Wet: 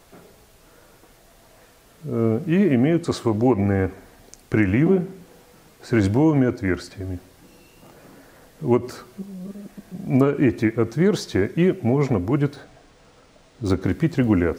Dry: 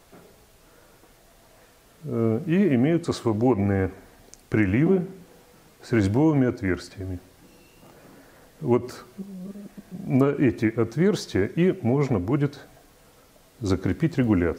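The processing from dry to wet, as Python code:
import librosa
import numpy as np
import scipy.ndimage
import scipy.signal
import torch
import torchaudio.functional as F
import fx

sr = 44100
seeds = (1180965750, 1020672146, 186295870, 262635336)

y = fx.resample_linear(x, sr, factor=3, at=(12.53, 13.82))
y = y * librosa.db_to_amplitude(2.5)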